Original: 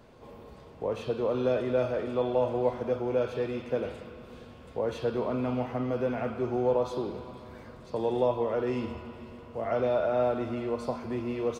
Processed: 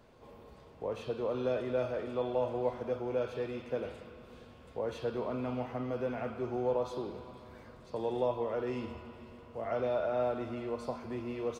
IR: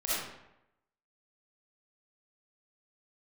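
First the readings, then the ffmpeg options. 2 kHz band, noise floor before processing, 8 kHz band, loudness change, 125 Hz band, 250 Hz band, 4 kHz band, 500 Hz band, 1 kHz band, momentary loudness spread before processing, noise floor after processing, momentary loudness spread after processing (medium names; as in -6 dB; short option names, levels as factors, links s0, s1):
-4.5 dB, -49 dBFS, no reading, -5.5 dB, -6.0 dB, -6.0 dB, -4.5 dB, -5.5 dB, -5.0 dB, 18 LU, -55 dBFS, 18 LU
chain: -af "equalizer=f=190:w=0.51:g=-2,volume=0.596"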